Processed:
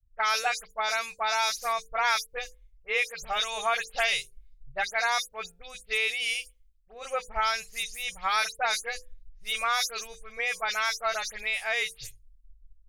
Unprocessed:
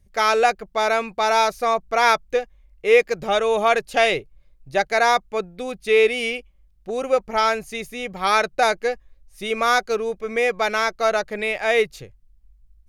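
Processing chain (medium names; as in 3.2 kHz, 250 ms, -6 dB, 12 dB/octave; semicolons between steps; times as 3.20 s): delay that grows with frequency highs late, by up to 109 ms; amplifier tone stack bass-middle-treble 10-0-10; hum notches 50/100/150/200/250/300/350/400/450/500 Hz; compression 3:1, threshold -33 dBFS, peak gain reduction 10 dB; three bands expanded up and down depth 100%; trim +6.5 dB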